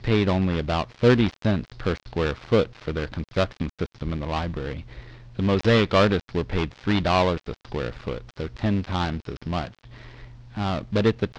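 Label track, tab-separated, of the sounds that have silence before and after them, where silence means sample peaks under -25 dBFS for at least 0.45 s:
5.390000	9.670000	sound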